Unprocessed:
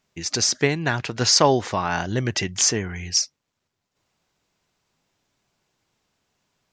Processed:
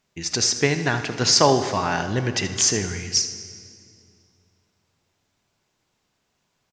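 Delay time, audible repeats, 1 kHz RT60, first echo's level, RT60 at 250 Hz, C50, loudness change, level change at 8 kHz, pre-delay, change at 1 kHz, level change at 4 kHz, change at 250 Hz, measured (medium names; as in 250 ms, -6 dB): 77 ms, 1, 2.3 s, -13.5 dB, 2.8 s, 9.0 dB, +0.5 dB, +0.5 dB, 19 ms, +0.5 dB, +0.5 dB, +0.5 dB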